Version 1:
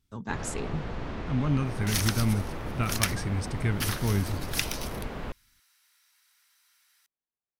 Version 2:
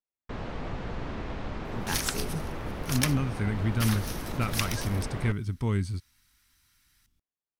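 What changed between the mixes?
speech: entry +1.60 s; reverb: off

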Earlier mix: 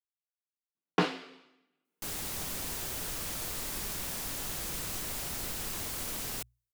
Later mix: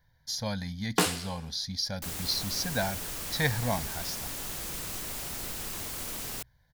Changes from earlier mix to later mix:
speech: unmuted; first sound: remove air absorption 240 m

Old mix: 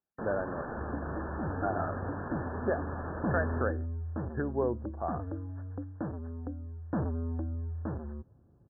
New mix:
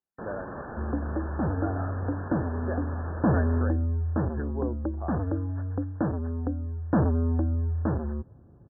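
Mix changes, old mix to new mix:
speech -4.0 dB; second sound +9.0 dB

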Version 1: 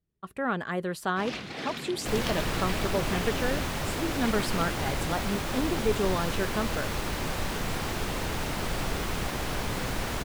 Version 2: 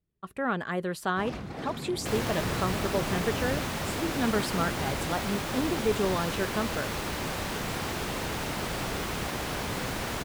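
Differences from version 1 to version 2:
first sound: remove weighting filter D; second sound: add HPF 81 Hz 6 dB/oct

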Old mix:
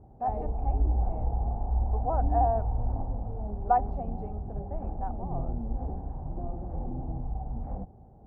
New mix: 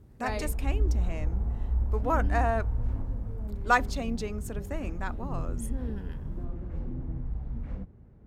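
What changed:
speech +11.0 dB; master: remove synth low-pass 770 Hz, resonance Q 8.7

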